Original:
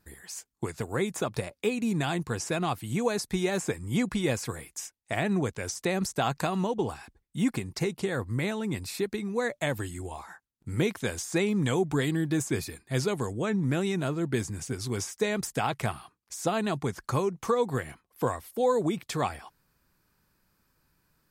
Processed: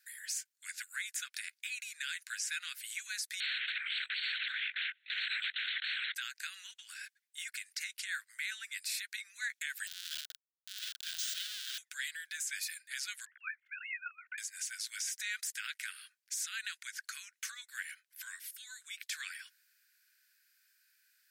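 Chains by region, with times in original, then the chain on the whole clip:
0:03.40–0:06.15: high-frequency loss of the air 160 metres + linear-prediction vocoder at 8 kHz whisper + every bin compressed towards the loudest bin 10 to 1
0:09.87–0:11.78: comparator with hysteresis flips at −38.5 dBFS + de-essing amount 90% + high shelf with overshoot 2,700 Hz +7.5 dB, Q 3
0:13.25–0:14.38: three sine waves on the formant tracks + double-tracking delay 14 ms −2.5 dB + output level in coarse steps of 10 dB
whole clip: downward compressor 3 to 1, threshold −30 dBFS; Chebyshev high-pass filter 1,500 Hz, order 6; brickwall limiter −31 dBFS; level +4 dB

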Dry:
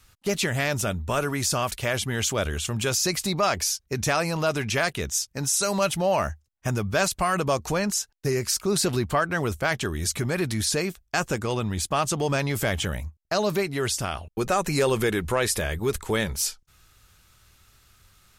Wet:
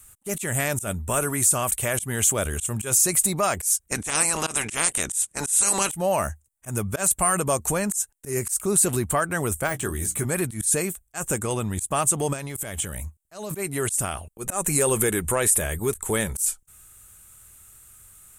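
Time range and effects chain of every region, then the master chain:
0:03.87–0:05.90: ceiling on every frequency bin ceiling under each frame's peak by 21 dB + low-pass filter 9,800 Hz 24 dB per octave
0:09.67–0:10.25: de-essing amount 75% + mains-hum notches 60/120/180/240/300 Hz + double-tracking delay 16 ms −9.5 dB
0:12.33–0:13.51: parametric band 3,800 Hz +3.5 dB 1.4 octaves + downward compressor 12 to 1, threshold −28 dBFS
whole clip: high shelf with overshoot 6,500 Hz +11 dB, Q 3; brickwall limiter −8 dBFS; volume swells 116 ms

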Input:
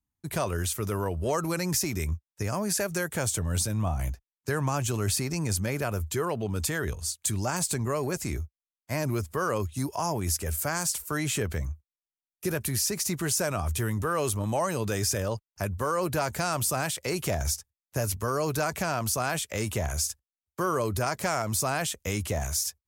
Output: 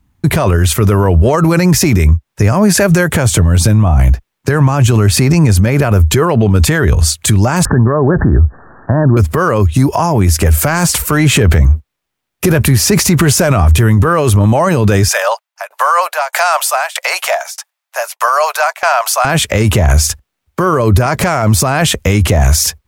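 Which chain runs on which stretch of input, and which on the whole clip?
0:07.65–0:09.17: Chebyshev low-pass filter 1,800 Hz, order 10 + envelope flattener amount 50%
0:10.43–0:13.73: downward compressor 2.5 to 1, threshold −33 dBFS + leveller curve on the samples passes 1
0:15.08–0:19.25: Butterworth high-pass 630 Hz 48 dB per octave + shaped tremolo saw down 1.6 Hz, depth 95%
whole clip: bass and treble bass +4 dB, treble −10 dB; downward compressor, threshold −28 dBFS; boost into a limiter +28.5 dB; level −1 dB

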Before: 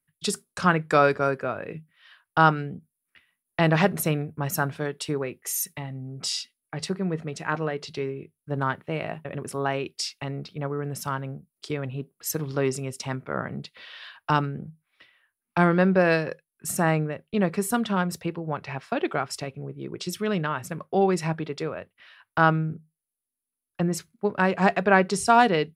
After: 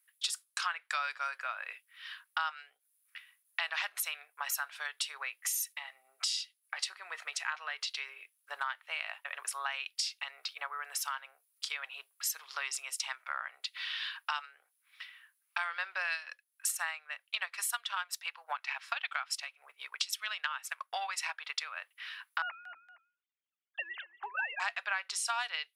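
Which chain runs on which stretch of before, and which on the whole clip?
0:16.07–0:21.80: high-pass filter 640 Hz + transient designer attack +7 dB, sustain −4 dB
0:22.42–0:24.60: three sine waves on the formant tracks + downward compressor 2.5 to 1, threshold −25 dBFS + repeating echo 233 ms, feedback 17%, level −20 dB
whole clip: Bessel high-pass filter 1,500 Hz, order 6; dynamic equaliser 3,300 Hz, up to +5 dB, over −45 dBFS, Q 1.2; downward compressor 4 to 1, threshold −44 dBFS; level +9 dB

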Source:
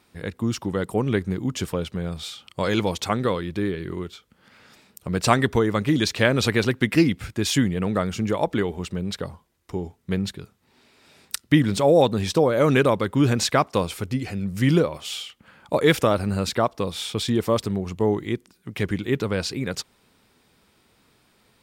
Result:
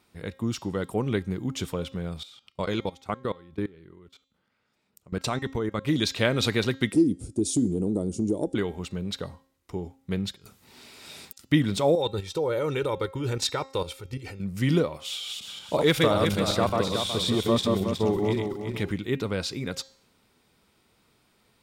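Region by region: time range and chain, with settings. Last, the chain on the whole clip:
0:02.23–0:05.85: transient designer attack +3 dB, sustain −2 dB + output level in coarse steps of 23 dB + high-shelf EQ 3,000 Hz −4.5 dB
0:06.92–0:08.55: drawn EQ curve 160 Hz 0 dB, 330 Hz +11 dB, 1,800 Hz −29 dB, 9,600 Hz +9 dB, 14,000 Hz −25 dB + downward compressor 2 to 1, threshold −18 dBFS
0:10.36–0:11.45: high-shelf EQ 3,400 Hz +8.5 dB + compressor whose output falls as the input rises −46 dBFS, ratio −0.5
0:11.95–0:14.40: output level in coarse steps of 12 dB + comb filter 2.2 ms, depth 66%
0:15.04–0:18.92: feedback delay that plays each chunk backwards 184 ms, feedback 57%, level −2 dB + hard clipping −7.5 dBFS
whole clip: hum removal 267.9 Hz, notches 29; dynamic equaliser 3,700 Hz, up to +7 dB, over −49 dBFS, Q 7.3; notch filter 1,700 Hz, Q 17; level −4 dB

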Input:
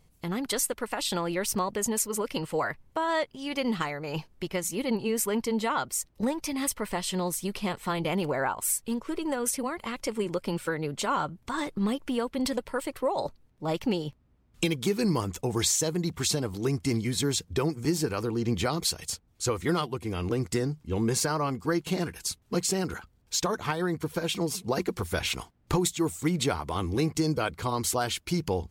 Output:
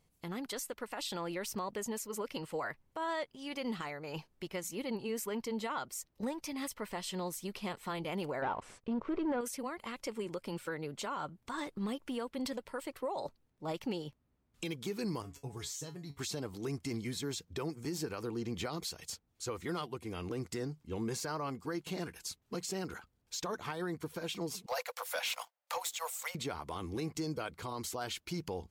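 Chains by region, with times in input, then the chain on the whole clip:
0:08.42–0:09.41: leveller curve on the samples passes 3 + head-to-tape spacing loss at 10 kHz 38 dB
0:15.22–0:16.19: parametric band 66 Hz +13.5 dB 1.9 octaves + tuned comb filter 140 Hz, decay 0.18 s, mix 90%
0:24.66–0:26.35: Chebyshev high-pass filter 500 Hz, order 8 + parametric band 13,000 Hz +6 dB 0.75 octaves + leveller curve on the samples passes 2
whole clip: low-shelf EQ 120 Hz −7.5 dB; brickwall limiter −21 dBFS; dynamic equaliser 9,400 Hz, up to −5 dB, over −51 dBFS, Q 2.3; level −7.5 dB

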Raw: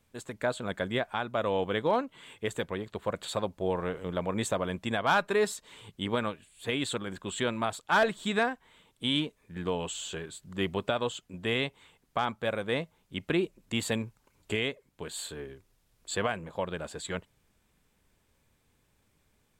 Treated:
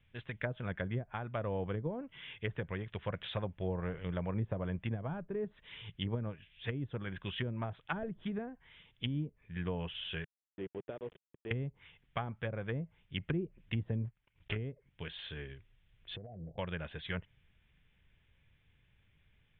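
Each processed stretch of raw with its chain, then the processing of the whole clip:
0:10.24–0:11.51: hold until the input has moved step −31.5 dBFS + de-essing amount 70% + resonant band-pass 400 Hz, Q 1.9
0:14.04–0:14.56: one scale factor per block 3 bits + transient designer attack +6 dB, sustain −12 dB + downward compressor 2 to 1, threshold −37 dBFS
0:16.16–0:16.58: Butterworth low-pass 750 Hz 96 dB per octave + downward compressor 12 to 1, threshold −39 dBFS
whole clip: Butterworth low-pass 3,500 Hz 96 dB per octave; flat-topped bell 520 Hz −11.5 dB 3 octaves; treble cut that deepens with the level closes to 390 Hz, closed at −32 dBFS; level +3.5 dB

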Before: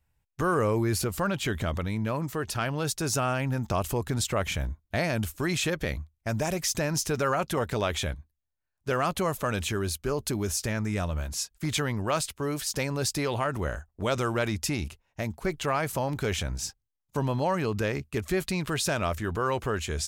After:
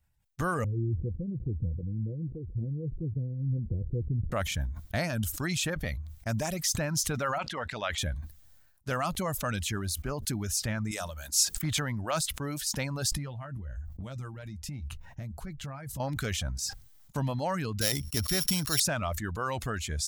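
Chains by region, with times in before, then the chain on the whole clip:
0:00.64–0:04.32: Chebyshev low-pass with heavy ripple 510 Hz, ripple 6 dB + low-shelf EQ 74 Hz +9.5 dB + upward compression, threshold −34 dBFS
0:07.38–0:07.98: low-pass filter 2,500 Hz + spectral tilt +3.5 dB per octave
0:10.91–0:11.57: bass and treble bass −9 dB, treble +9 dB + mains-hum notches 50/100/150/200/250/300/350/400/450 Hz
0:13.11–0:16.00: bass and treble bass +13 dB, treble −2 dB + downward compressor 5 to 1, threshold −36 dBFS + double-tracking delay 15 ms −10.5 dB
0:17.81–0:18.80: samples sorted by size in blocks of 8 samples + high-shelf EQ 3,700 Hz +11.5 dB
whole clip: reverb reduction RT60 0.88 s; graphic EQ with 15 bands 400 Hz −10 dB, 1,000 Hz −4 dB, 2,500 Hz −4 dB; level that may fall only so fast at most 55 dB per second

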